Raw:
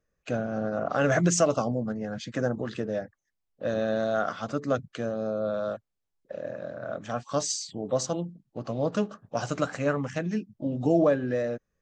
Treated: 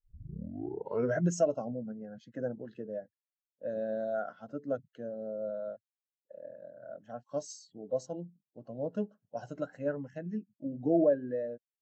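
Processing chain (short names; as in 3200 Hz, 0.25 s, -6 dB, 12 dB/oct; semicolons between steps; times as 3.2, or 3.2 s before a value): tape start at the beginning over 1.20 s; notch comb 1200 Hz; spectral expander 1.5:1; gain -4 dB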